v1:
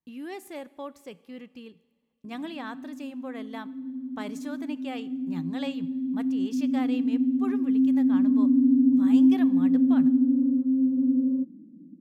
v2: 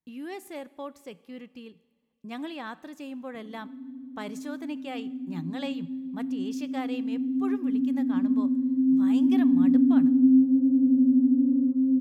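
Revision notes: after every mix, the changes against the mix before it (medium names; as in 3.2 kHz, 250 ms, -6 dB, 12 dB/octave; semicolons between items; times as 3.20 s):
background: entry +1.10 s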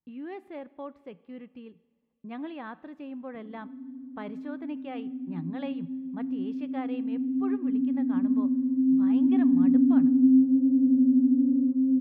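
master: add distance through air 470 m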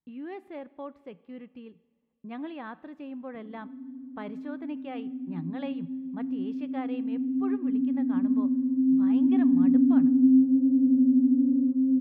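no change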